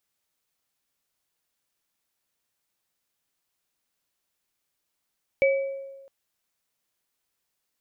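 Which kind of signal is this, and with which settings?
sine partials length 0.66 s, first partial 545 Hz, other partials 2.29 kHz, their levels -5.5 dB, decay 1.24 s, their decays 0.58 s, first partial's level -16 dB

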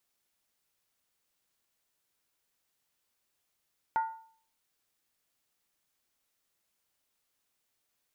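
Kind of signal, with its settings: skin hit, lowest mode 896 Hz, decay 0.52 s, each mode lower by 11 dB, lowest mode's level -23 dB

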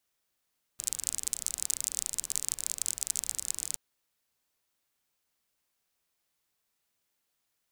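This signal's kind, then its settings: rain from filtered ticks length 2.97 s, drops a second 35, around 7.7 kHz, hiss -20 dB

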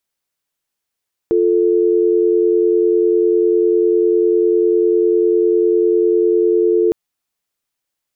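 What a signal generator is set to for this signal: call progress tone dial tone, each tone -13.5 dBFS 5.61 s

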